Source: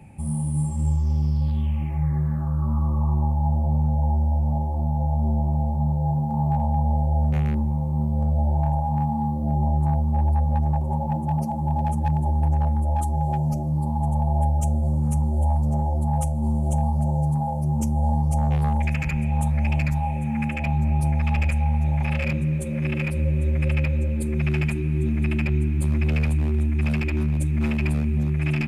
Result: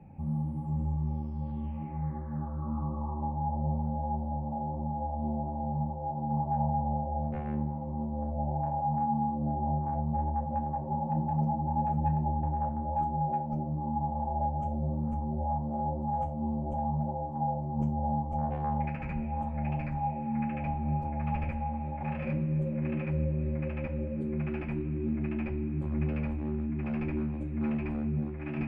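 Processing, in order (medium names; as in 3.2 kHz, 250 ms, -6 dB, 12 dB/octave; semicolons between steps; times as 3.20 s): low-pass 1.3 kHz 12 dB/octave; hum notches 50/100/150 Hz; two-slope reverb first 0.3 s, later 1.9 s, from -20 dB, DRR 3 dB; trim -6 dB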